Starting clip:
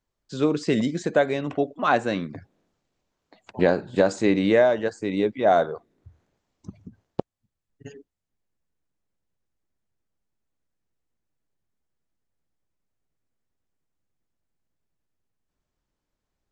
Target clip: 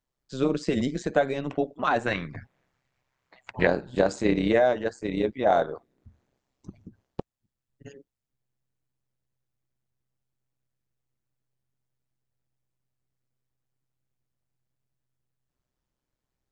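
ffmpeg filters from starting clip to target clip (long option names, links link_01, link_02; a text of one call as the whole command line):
ffmpeg -i in.wav -filter_complex "[0:a]asettb=1/sr,asplit=3[link_01][link_02][link_03];[link_01]atrim=end=2.064[link_04];[link_02]atrim=start=2.06:end=3.67,asetpts=PTS-STARTPTS,afade=type=in:duration=0.004:curve=qsin,afade=type=out:start_time=1.606:duration=0.004:curve=qsin,equalizer=frequency=125:width_type=o:width=1:gain=9,equalizer=frequency=250:width_type=o:width=1:gain=-9,equalizer=frequency=1000:width_type=o:width=1:gain=4,equalizer=frequency=2000:width_type=o:width=1:gain=10[link_05];[link_03]atrim=start=3.666[link_06];[link_04][link_05]acrossfade=duration=0.004:curve1=hsin:curve2=qsin[link_07];[link_07][link_06]acrossfade=duration=0.004:curve1=qsin:curve2=hsin,tremolo=f=130:d=0.667" out.wav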